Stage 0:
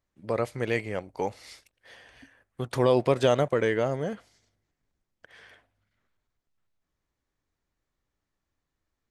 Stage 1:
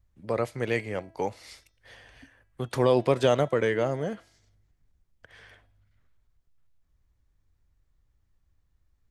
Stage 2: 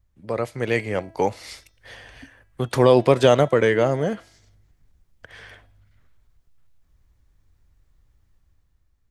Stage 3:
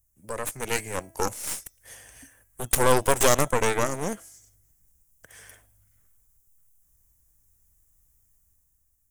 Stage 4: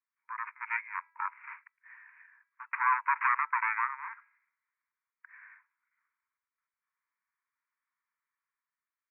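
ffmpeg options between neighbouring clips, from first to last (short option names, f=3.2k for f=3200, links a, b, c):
-filter_complex "[0:a]acrossover=split=110|1800[a][b][c];[a]acompressor=mode=upward:threshold=-51dB:ratio=2.5[d];[d][b][c]amix=inputs=3:normalize=0,bandreject=f=328.5:t=h:w=4,bandreject=f=657:t=h:w=4,bandreject=f=985.5:t=h:w=4,bandreject=f=1.314k:t=h:w=4,bandreject=f=1.6425k:t=h:w=4,bandreject=f=1.971k:t=h:w=4,bandreject=f=2.2995k:t=h:w=4,bandreject=f=2.628k:t=h:w=4,bandreject=f=2.9565k:t=h:w=4,bandreject=f=3.285k:t=h:w=4,bandreject=f=3.6135k:t=h:w=4,bandreject=f=3.942k:t=h:w=4,bandreject=f=4.2705k:t=h:w=4,bandreject=f=4.599k:t=h:w=4,bandreject=f=4.9275k:t=h:w=4,bandreject=f=5.256k:t=h:w=4,bandreject=f=5.5845k:t=h:w=4,bandreject=f=5.913k:t=h:w=4,bandreject=f=6.2415k:t=h:w=4,bandreject=f=6.57k:t=h:w=4"
-af "dynaudnorm=f=140:g=11:m=7dB,volume=1.5dB"
-af "aexciter=amount=13.5:drive=6.5:freq=6.3k,aeval=exprs='1.26*(cos(1*acos(clip(val(0)/1.26,-1,1)))-cos(1*PI/2))+0.0891*(cos(3*acos(clip(val(0)/1.26,-1,1)))-cos(3*PI/2))+0.251*(cos(8*acos(clip(val(0)/1.26,-1,1)))-cos(8*PI/2))':c=same,volume=-6dB"
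-af "asuperpass=centerf=1500:order=20:qfactor=1"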